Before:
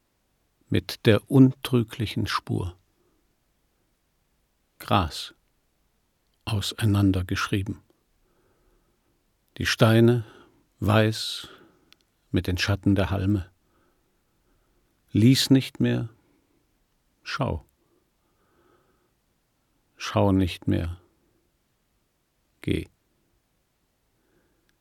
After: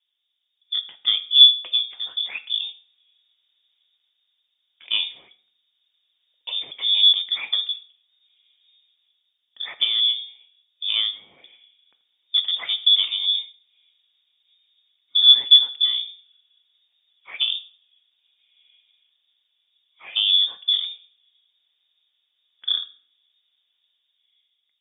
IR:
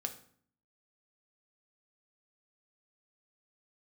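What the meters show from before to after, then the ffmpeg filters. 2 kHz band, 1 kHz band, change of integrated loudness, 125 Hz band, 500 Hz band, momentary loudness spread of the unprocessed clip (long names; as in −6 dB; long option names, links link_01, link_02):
−5.0 dB, below −15 dB, +6.0 dB, below −40 dB, below −25 dB, 17 LU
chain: -filter_complex "[0:a]dynaudnorm=framelen=130:gausssize=13:maxgain=7.5dB,equalizer=frequency=250:width_type=o:width=0.67:gain=10,equalizer=frequency=630:width_type=o:width=0.67:gain=6,equalizer=frequency=2500:width_type=o:width=0.67:gain=-4,lowpass=frequency=3100:width_type=q:width=0.5098,lowpass=frequency=3100:width_type=q:width=0.6013,lowpass=frequency=3100:width_type=q:width=0.9,lowpass=frequency=3100:width_type=q:width=2.563,afreqshift=-3700,highpass=120,asplit=2[link_01][link_02];[link_02]aemphasis=mode=production:type=riaa[link_03];[1:a]atrim=start_sample=2205,highshelf=frequency=3800:gain=7[link_04];[link_03][link_04]afir=irnorm=-1:irlink=0,volume=-1.5dB[link_05];[link_01][link_05]amix=inputs=2:normalize=0,volume=-16.5dB"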